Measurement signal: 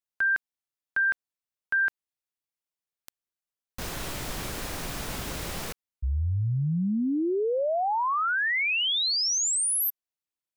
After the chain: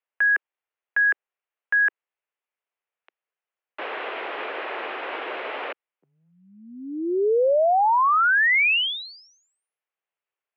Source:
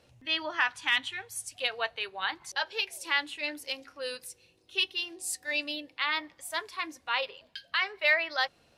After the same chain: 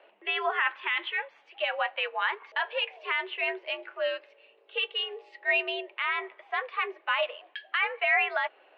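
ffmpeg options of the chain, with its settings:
-af "alimiter=limit=-23.5dB:level=0:latency=1:release=23,highpass=f=310:t=q:w=0.5412,highpass=f=310:t=q:w=1.307,lowpass=f=2.8k:t=q:w=0.5176,lowpass=f=2.8k:t=q:w=0.7071,lowpass=f=2.8k:t=q:w=1.932,afreqshift=79,volume=8dB"

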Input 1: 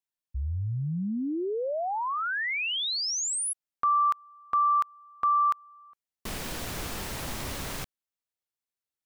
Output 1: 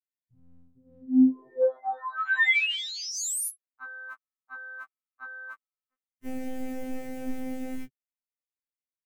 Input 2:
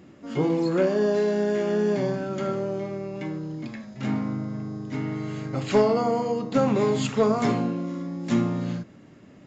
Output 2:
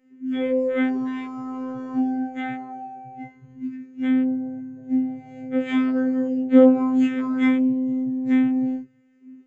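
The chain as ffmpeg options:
-filter_complex "[0:a]acrossover=split=240[a][b];[a]alimiter=level_in=3dB:limit=-24dB:level=0:latency=1:release=435,volume=-3dB[c];[c][b]amix=inputs=2:normalize=0,afftfilt=real='hypot(re,im)*cos(PI*b)':imag='0':win_size=2048:overlap=0.75,equalizer=f=250:t=o:w=1:g=4,equalizer=f=500:t=o:w=1:g=3,equalizer=f=1k:t=o:w=1:g=-10,equalizer=f=2k:t=o:w=1:g=11,equalizer=f=4k:t=o:w=1:g=-9,afwtdn=0.0158,afftfilt=real='re*2.45*eq(mod(b,6),0)':imag='im*2.45*eq(mod(b,6),0)':win_size=2048:overlap=0.75,volume=5.5dB"

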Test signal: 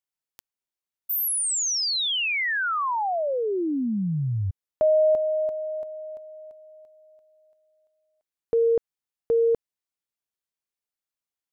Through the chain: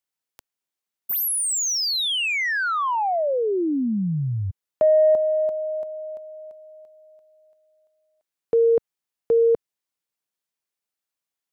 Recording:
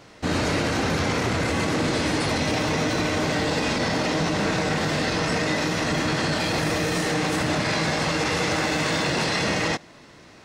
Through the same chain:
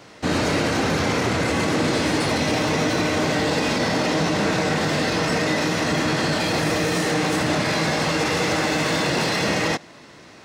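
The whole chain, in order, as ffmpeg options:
-filter_complex "[0:a]highpass=f=110:p=1,acrossover=split=740[a][b];[b]asoftclip=type=tanh:threshold=-22.5dB[c];[a][c]amix=inputs=2:normalize=0,volume=3.5dB"

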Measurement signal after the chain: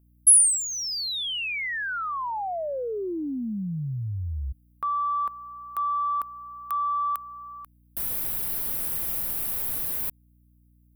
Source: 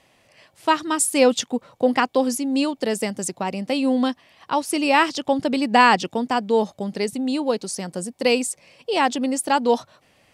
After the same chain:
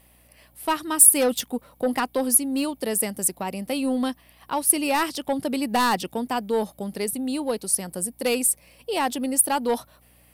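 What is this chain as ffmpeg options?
-af "aeval=exprs='0.841*sin(PI/2*2.24*val(0)/0.841)':c=same,aexciter=amount=12.7:drive=3.5:freq=9.5k,aeval=exprs='val(0)+0.00631*(sin(2*PI*60*n/s)+sin(2*PI*2*60*n/s)/2+sin(2*PI*3*60*n/s)/3+sin(2*PI*4*60*n/s)/4+sin(2*PI*5*60*n/s)/5)':c=same,volume=-14.5dB"

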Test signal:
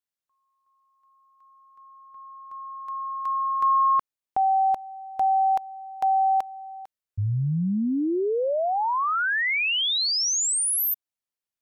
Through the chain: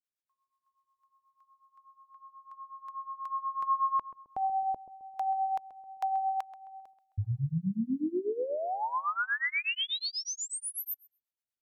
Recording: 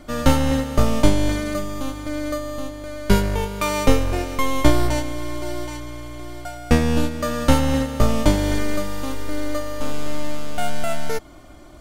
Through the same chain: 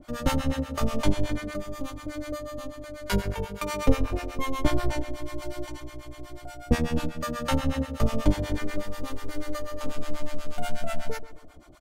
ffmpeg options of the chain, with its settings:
-filter_complex "[0:a]asplit=2[a][b];[b]adelay=132,lowpass=f=2.4k:p=1,volume=-14dB,asplit=2[c][d];[d]adelay=132,lowpass=f=2.4k:p=1,volume=0.43,asplit=2[e][f];[f]adelay=132,lowpass=f=2.4k:p=1,volume=0.43,asplit=2[g][h];[h]adelay=132,lowpass=f=2.4k:p=1,volume=0.43[i];[a][c][e][g][i]amix=inputs=5:normalize=0,acrossover=split=660[j][k];[j]aeval=exprs='val(0)*(1-1/2+1/2*cos(2*PI*8.2*n/s))':c=same[l];[k]aeval=exprs='val(0)*(1-1/2-1/2*cos(2*PI*8.2*n/s))':c=same[m];[l][m]amix=inputs=2:normalize=0,adynamicequalizer=threshold=0.00708:dfrequency=4000:dqfactor=0.7:tfrequency=4000:tqfactor=0.7:attack=5:release=100:ratio=0.375:range=3.5:mode=cutabove:tftype=highshelf,volume=-3dB"

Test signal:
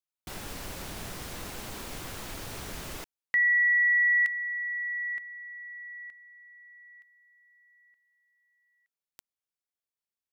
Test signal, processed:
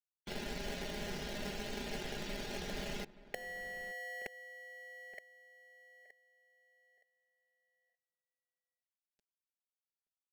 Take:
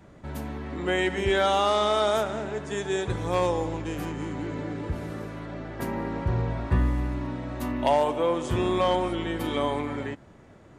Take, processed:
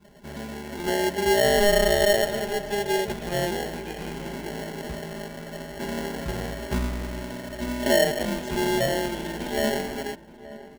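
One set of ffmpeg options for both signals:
-filter_complex "[0:a]acrossover=split=8000[a][b];[b]acompressor=threshold=-59dB:ratio=4:attack=1:release=60[c];[a][c]amix=inputs=2:normalize=0,afftdn=nr=29:nf=-50,bass=f=250:g=-6,treble=f=4k:g=-2,aecho=1:1:4.9:0.87,acrossover=split=1600[d][e];[d]acrusher=samples=36:mix=1:aa=0.000001[f];[e]acompressor=threshold=-44dB:ratio=6:attack=17:release=124[g];[f][g]amix=inputs=2:normalize=0,asplit=2[h][i];[i]adelay=874.6,volume=-16dB,highshelf=f=4k:g=-19.7[j];[h][j]amix=inputs=2:normalize=0"

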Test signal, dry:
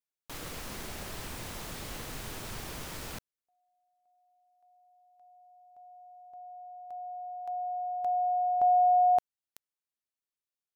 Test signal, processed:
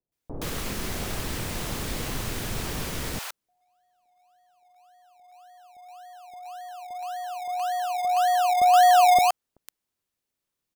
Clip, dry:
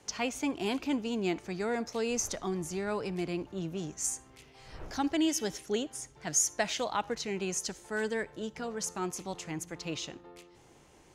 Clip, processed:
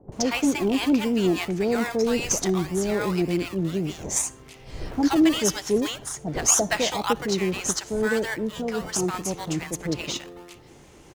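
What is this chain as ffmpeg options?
-filter_complex "[0:a]asplit=2[a][b];[b]acrusher=samples=24:mix=1:aa=0.000001:lfo=1:lforange=14.4:lforate=1.8,volume=-8dB[c];[a][c]amix=inputs=2:normalize=0,acrossover=split=750[d][e];[e]adelay=120[f];[d][f]amix=inputs=2:normalize=0,volume=8dB"

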